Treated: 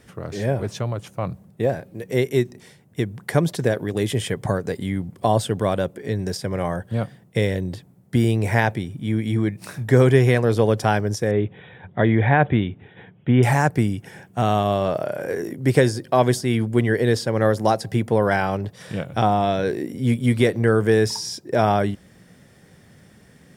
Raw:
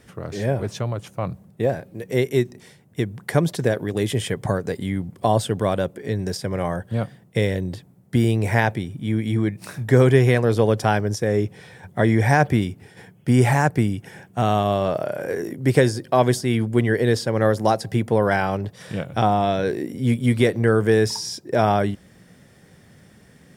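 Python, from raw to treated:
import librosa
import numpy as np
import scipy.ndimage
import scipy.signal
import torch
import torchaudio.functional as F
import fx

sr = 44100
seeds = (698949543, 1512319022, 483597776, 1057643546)

y = fx.brickwall_lowpass(x, sr, high_hz=3900.0, at=(11.31, 13.43))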